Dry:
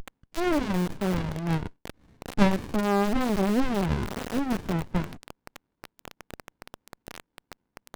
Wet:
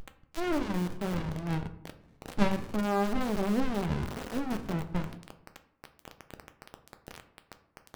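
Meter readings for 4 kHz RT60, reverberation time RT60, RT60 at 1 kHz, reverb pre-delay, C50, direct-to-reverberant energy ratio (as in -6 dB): 0.40 s, 0.75 s, 0.70 s, 6 ms, 13.0 dB, 8.0 dB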